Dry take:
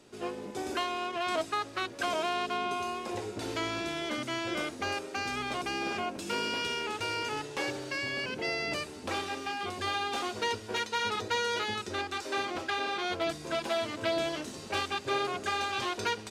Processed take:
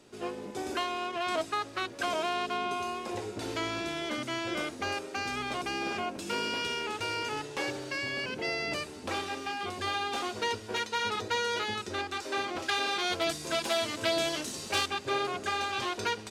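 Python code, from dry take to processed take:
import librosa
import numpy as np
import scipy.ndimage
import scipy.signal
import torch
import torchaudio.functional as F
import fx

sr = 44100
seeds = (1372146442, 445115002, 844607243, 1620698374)

y = fx.high_shelf(x, sr, hz=3400.0, db=10.5, at=(12.62, 14.86))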